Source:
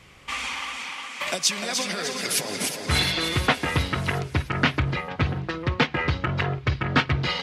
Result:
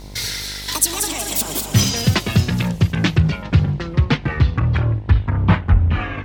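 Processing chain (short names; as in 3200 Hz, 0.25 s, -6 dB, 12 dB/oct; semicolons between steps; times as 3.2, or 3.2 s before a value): speed glide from 184% -> 54%; tone controls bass +13 dB, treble +5 dB; vocal rider within 4 dB 2 s; buzz 50 Hz, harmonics 21, -35 dBFS -6 dB/oct; gain -1 dB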